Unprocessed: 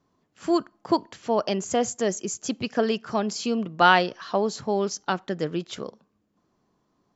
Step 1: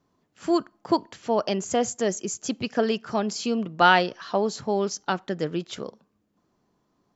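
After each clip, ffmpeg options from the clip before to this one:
-af "bandreject=f=1.1k:w=30"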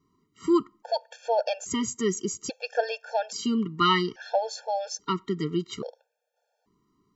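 -af "afftfilt=real='re*gt(sin(2*PI*0.6*pts/sr)*(1-2*mod(floor(b*sr/1024/460),2)),0)':imag='im*gt(sin(2*PI*0.6*pts/sr)*(1-2*mod(floor(b*sr/1024/460),2)),0)':win_size=1024:overlap=0.75,volume=1.5dB"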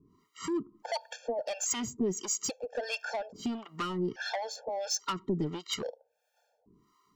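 -filter_complex "[0:a]acompressor=threshold=-29dB:ratio=8,asoftclip=type=tanh:threshold=-31dB,acrossover=split=660[a][b];[a]aeval=exprs='val(0)*(1-1/2+1/2*cos(2*PI*1.5*n/s))':c=same[c];[b]aeval=exprs='val(0)*(1-1/2-1/2*cos(2*PI*1.5*n/s))':c=same[d];[c][d]amix=inputs=2:normalize=0,volume=8.5dB"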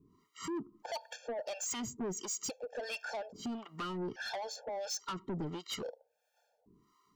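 -af "asoftclip=type=tanh:threshold=-31.5dB,volume=-2dB"

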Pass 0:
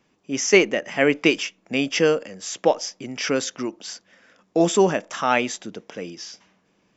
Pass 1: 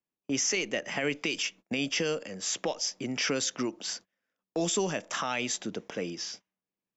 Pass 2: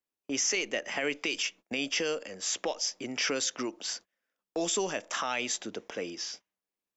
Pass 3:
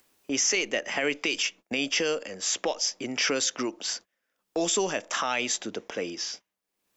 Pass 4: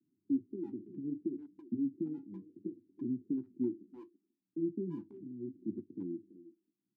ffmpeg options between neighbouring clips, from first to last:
-filter_complex "[0:a]agate=range=-30dB:threshold=-44dB:ratio=16:detection=peak,acrossover=split=110|2800[a][b][c];[b]acompressor=threshold=-28dB:ratio=4[d];[a][d][c]amix=inputs=3:normalize=0,alimiter=limit=-19.5dB:level=0:latency=1:release=22"
-af "equalizer=f=150:w=1.2:g=-11.5"
-af "acompressor=mode=upward:threshold=-53dB:ratio=2.5,volume=4dB"
-filter_complex "[0:a]asuperpass=centerf=190:order=20:qfactor=0.73,asplit=2[a][b];[b]adelay=330,highpass=300,lowpass=3.4k,asoftclip=type=hard:threshold=-33.5dB,volume=-12dB[c];[a][c]amix=inputs=2:normalize=0,flanger=delay=7:depth=9:regen=-45:speed=0.67:shape=sinusoidal,volume=3dB"

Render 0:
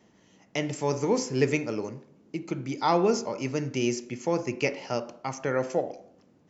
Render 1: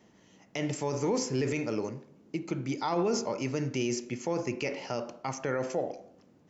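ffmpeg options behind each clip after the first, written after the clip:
-af "alimiter=limit=-20.5dB:level=0:latency=1:release=29"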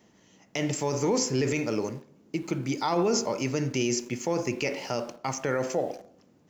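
-filter_complex "[0:a]highshelf=f=4.6k:g=5.5,asplit=2[a][b];[b]aeval=exprs='val(0)*gte(abs(val(0)),0.00668)':c=same,volume=-7dB[c];[a][c]amix=inputs=2:normalize=0"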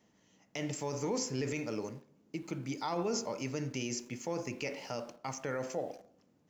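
-af "bandreject=f=370:w=12,volume=-8.5dB"

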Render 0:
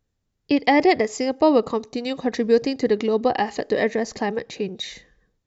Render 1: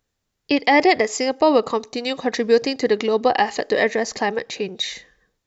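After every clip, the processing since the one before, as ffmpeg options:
-af "lowshelf=f=390:g=-11,alimiter=level_in=10.5dB:limit=-1dB:release=50:level=0:latency=1,volume=-4dB"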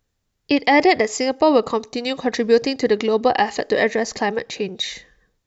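-af "lowshelf=f=160:g=6.5"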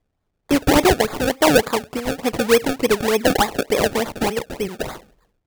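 -af "acrusher=samples=30:mix=1:aa=0.000001:lfo=1:lforange=30:lforate=3.4"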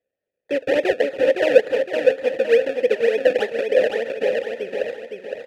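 -filter_complex "[0:a]asplit=3[a][b][c];[a]bandpass=f=530:t=q:w=8,volume=0dB[d];[b]bandpass=f=1.84k:t=q:w=8,volume=-6dB[e];[c]bandpass=f=2.48k:t=q:w=8,volume=-9dB[f];[d][e][f]amix=inputs=3:normalize=0,aecho=1:1:512|1024|1536|2048|2560:0.596|0.244|0.1|0.0411|0.0168,volume=6.5dB"

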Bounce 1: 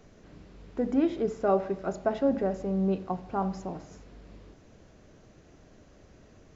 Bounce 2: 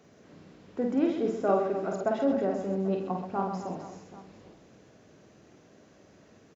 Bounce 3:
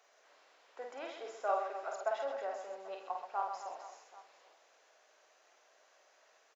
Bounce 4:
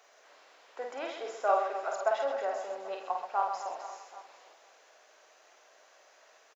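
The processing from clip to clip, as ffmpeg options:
-filter_complex "[0:a]highpass=140,asplit=2[a][b];[b]aecho=0:1:50|130|258|462.8|790.5:0.631|0.398|0.251|0.158|0.1[c];[a][c]amix=inputs=2:normalize=0,volume=-1.5dB"
-af "highpass=f=660:w=0.5412,highpass=f=660:w=1.3066,volume=-3dB"
-af "aecho=1:1:498:0.126,volume=6.5dB"

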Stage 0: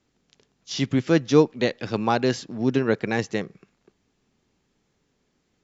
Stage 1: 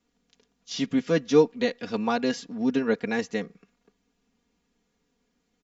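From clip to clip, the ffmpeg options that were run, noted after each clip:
-af "aecho=1:1:4.2:0.82,volume=-5.5dB"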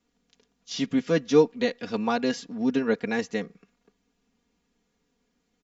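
-af anull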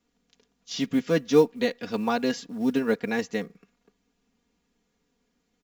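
-af "acrusher=bits=8:mode=log:mix=0:aa=0.000001"

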